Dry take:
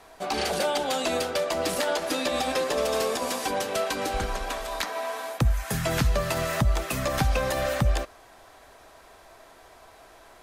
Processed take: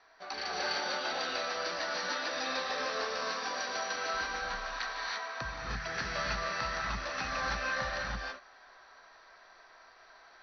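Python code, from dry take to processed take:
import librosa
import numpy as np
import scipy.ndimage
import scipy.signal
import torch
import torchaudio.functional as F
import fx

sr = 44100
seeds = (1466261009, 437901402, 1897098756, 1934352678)

y = scipy.signal.sosfilt(scipy.signal.cheby1(6, 9, 6000.0, 'lowpass', fs=sr, output='sos'), x)
y = fx.low_shelf(y, sr, hz=400.0, db=-11.0)
y = fx.rev_gated(y, sr, seeds[0], gate_ms=360, shape='rising', drr_db=-4.5)
y = F.gain(torch.from_numpy(y), -4.5).numpy()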